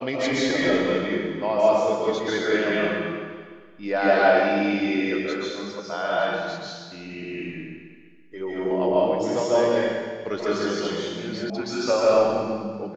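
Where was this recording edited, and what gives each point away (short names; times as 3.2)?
11.5 sound cut off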